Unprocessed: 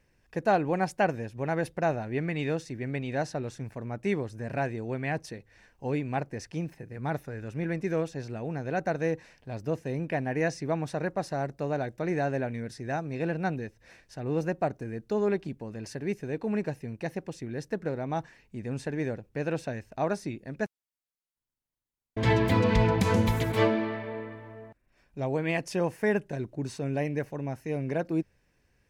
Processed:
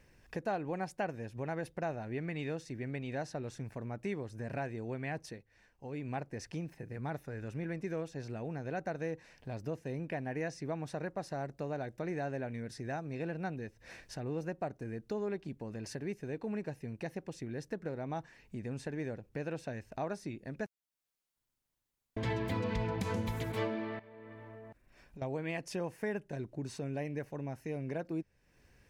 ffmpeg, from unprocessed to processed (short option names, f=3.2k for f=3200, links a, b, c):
-filter_complex "[0:a]asettb=1/sr,asplit=3[a][b][c];[a]atrim=end=23.994[d];[b]atrim=start=23.99:end=25.22,asetpts=PTS-STARTPTS,afade=t=in:d=0.004:c=qsin,afade=t=out:st=1.226:d=0.004:c=qsin,acompressor=threshold=-51dB:ratio=6:attack=3.2:release=140:knee=1:detection=peak[e];[c]atrim=start=25.216[f];[d][e]acrossfade=d=0.004:c1=hsin:c2=qsin[g];[g][f]acrossfade=d=0.004:c1=qsin:c2=hsin,asplit=3[h][i][j];[h]atrim=end=5.45,asetpts=PTS-STARTPTS,afade=t=out:st=5.27:d=0.18:silence=0.237137[k];[i]atrim=start=5.45:end=5.91,asetpts=PTS-STARTPTS,volume=-12.5dB[l];[j]atrim=start=5.91,asetpts=PTS-STARTPTS,afade=t=in:d=0.18:silence=0.237137[m];[k][l][m]concat=n=3:v=0:a=1,acompressor=threshold=-50dB:ratio=2,volume=4.5dB"